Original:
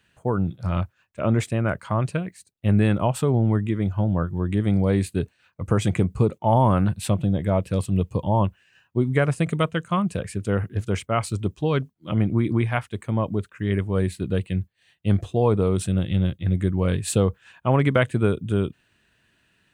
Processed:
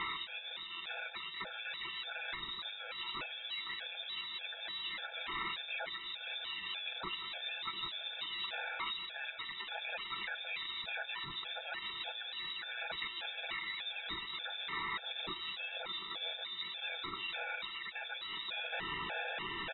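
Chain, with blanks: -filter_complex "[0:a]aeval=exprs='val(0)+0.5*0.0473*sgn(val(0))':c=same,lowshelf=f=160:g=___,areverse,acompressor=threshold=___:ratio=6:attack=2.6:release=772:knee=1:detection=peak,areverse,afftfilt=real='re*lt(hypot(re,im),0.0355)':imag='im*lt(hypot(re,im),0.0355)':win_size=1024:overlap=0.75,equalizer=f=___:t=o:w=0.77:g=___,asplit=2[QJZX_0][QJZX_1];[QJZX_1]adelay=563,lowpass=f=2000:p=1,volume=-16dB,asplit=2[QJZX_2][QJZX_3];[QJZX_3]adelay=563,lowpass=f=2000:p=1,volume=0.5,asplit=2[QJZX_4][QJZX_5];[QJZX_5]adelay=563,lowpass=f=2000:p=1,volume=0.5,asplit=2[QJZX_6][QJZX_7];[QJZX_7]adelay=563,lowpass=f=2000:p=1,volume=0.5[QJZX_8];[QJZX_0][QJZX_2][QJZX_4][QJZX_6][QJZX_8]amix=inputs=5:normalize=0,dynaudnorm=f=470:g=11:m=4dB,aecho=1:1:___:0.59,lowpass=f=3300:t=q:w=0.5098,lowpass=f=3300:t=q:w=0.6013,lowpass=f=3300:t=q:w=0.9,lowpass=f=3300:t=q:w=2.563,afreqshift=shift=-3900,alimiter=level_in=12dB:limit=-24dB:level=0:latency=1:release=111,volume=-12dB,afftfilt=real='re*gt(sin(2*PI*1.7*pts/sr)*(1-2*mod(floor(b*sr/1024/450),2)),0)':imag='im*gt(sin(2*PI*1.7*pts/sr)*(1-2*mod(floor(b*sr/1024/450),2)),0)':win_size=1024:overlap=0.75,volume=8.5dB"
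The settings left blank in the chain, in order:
2.5, -29dB, 690, -13, 6.2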